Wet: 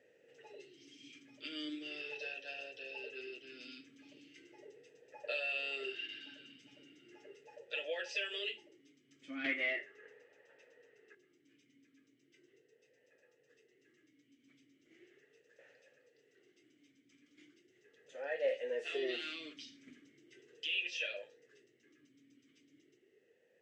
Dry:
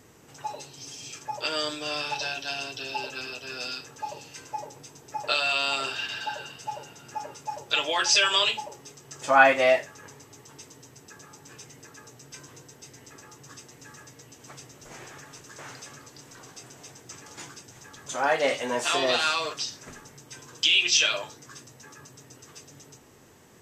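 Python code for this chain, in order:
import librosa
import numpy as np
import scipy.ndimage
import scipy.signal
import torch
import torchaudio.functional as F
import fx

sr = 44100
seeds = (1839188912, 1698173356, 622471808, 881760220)

y = fx.peak_eq(x, sr, hz=1200.0, db=15.0, octaves=2.3, at=(9.44, 11.15))
y = fx.rider(y, sr, range_db=4, speed_s=2.0)
y = 10.0 ** (-7.0 / 20.0) * np.tanh(y / 10.0 ** (-7.0 / 20.0))
y = fx.vowel_sweep(y, sr, vowels='e-i', hz=0.38)
y = y * 10.0 ** (-4.5 / 20.0)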